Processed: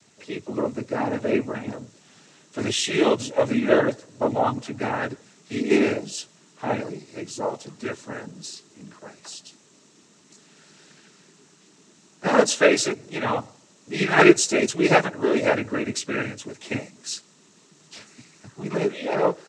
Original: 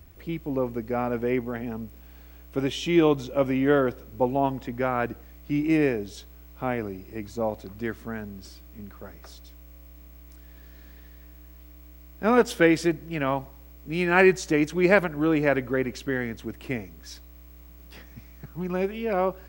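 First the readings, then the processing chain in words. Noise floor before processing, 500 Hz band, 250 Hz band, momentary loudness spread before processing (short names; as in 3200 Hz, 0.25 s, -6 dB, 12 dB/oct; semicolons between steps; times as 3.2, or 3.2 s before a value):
-48 dBFS, +2.0 dB, +0.5 dB, 21 LU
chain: tone controls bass -5 dB, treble +14 dB; doubler 16 ms -5.5 dB; noise vocoder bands 12; gain +1.5 dB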